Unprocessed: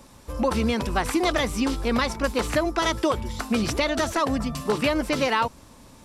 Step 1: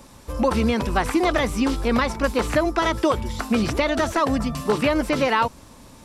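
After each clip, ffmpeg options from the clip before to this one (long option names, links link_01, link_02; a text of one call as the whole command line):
ffmpeg -i in.wav -filter_complex "[0:a]acrossover=split=2700[link_01][link_02];[link_02]acompressor=threshold=-36dB:ratio=4:attack=1:release=60[link_03];[link_01][link_03]amix=inputs=2:normalize=0,volume=3dB" out.wav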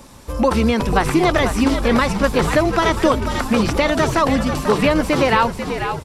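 ffmpeg -i in.wav -filter_complex "[0:a]asplit=8[link_01][link_02][link_03][link_04][link_05][link_06][link_07][link_08];[link_02]adelay=491,afreqshift=-75,volume=-8dB[link_09];[link_03]adelay=982,afreqshift=-150,volume=-13.2dB[link_10];[link_04]adelay=1473,afreqshift=-225,volume=-18.4dB[link_11];[link_05]adelay=1964,afreqshift=-300,volume=-23.6dB[link_12];[link_06]adelay=2455,afreqshift=-375,volume=-28.8dB[link_13];[link_07]adelay=2946,afreqshift=-450,volume=-34dB[link_14];[link_08]adelay=3437,afreqshift=-525,volume=-39.2dB[link_15];[link_01][link_09][link_10][link_11][link_12][link_13][link_14][link_15]amix=inputs=8:normalize=0,volume=4dB" out.wav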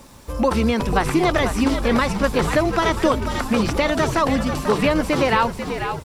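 ffmpeg -i in.wav -af "acrusher=bits=8:mix=0:aa=0.000001,volume=-2.5dB" out.wav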